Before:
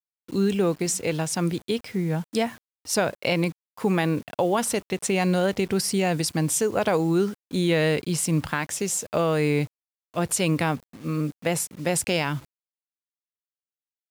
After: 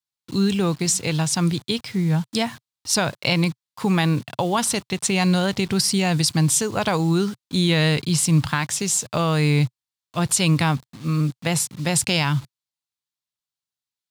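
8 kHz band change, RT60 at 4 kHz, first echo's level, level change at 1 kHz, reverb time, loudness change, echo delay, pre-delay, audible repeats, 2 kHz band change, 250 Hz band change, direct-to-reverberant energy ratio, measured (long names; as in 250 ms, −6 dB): +5.5 dB, no reverb audible, no echo audible, +2.5 dB, no reverb audible, +3.5 dB, no echo audible, no reverb audible, no echo audible, +3.5 dB, +3.5 dB, no reverb audible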